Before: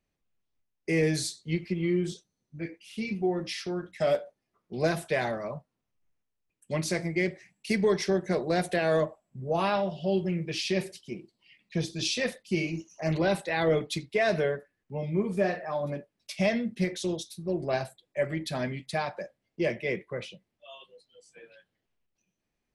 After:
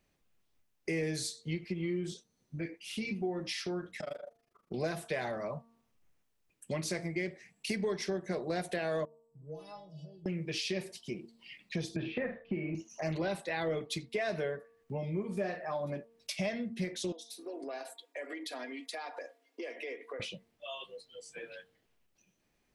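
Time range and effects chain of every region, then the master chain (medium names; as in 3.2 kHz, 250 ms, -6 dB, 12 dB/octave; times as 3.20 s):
4.00–4.74 s: compression, threshold -35 dBFS + AM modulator 25 Hz, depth 95% + peaking EQ 1.3 kHz +6.5 dB 0.28 oct
9.05–10.26 s: high-order bell 1.6 kHz -12.5 dB 2.5 oct + compression 3:1, threshold -42 dBFS + inharmonic resonator 150 Hz, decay 0.31 s, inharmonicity 0.008
11.96–12.75 s: inverse Chebyshev low-pass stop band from 7.8 kHz, stop band 70 dB + doubling 46 ms -7.5 dB + three bands compressed up and down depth 100%
17.12–20.20 s: Chebyshev high-pass 270 Hz, order 6 + comb 4.2 ms, depth 59% + compression 3:1, threshold -46 dBFS
whole clip: bass shelf 170 Hz -3 dB; de-hum 229.6 Hz, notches 5; compression 2.5:1, threshold -47 dBFS; trim +7.5 dB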